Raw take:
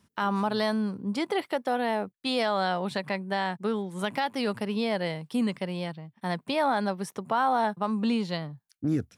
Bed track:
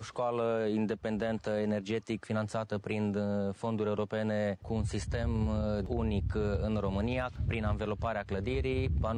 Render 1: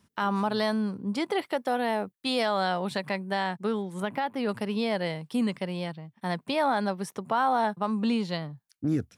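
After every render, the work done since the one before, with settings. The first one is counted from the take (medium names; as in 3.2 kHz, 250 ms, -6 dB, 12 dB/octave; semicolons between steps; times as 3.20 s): 1.57–3.43 s: treble shelf 9.5 kHz +5.5 dB; 4.00–4.49 s: peaking EQ 6.7 kHz -13 dB 2 oct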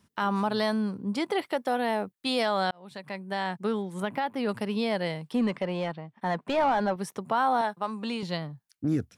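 2.71–3.58 s: fade in linear; 5.32–6.96 s: overdrive pedal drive 17 dB, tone 1 kHz, clips at -15 dBFS; 7.61–8.23 s: high-pass 500 Hz 6 dB/octave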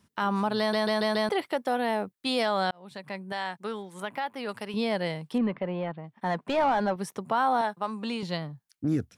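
0.59 s: stutter in place 0.14 s, 5 plays; 3.32–4.74 s: bass shelf 390 Hz -12 dB; 5.38–6.04 s: distance through air 390 m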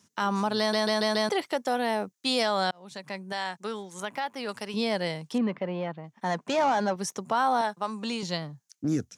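high-pass 120 Hz; peaking EQ 6.4 kHz +14.5 dB 0.7 oct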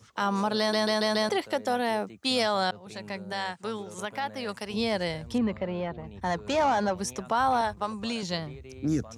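add bed track -13.5 dB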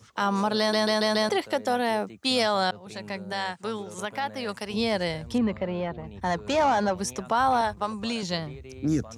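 trim +2 dB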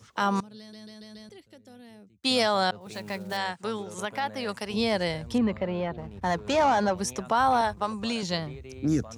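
0.40–2.24 s: amplifier tone stack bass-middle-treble 10-0-1; 2.81–3.38 s: block-companded coder 5-bit; 5.97–6.48 s: hysteresis with a dead band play -46.5 dBFS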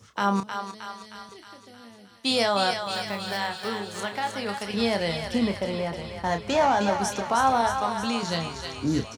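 doubling 30 ms -8 dB; on a send: thinning echo 312 ms, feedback 67%, high-pass 850 Hz, level -5 dB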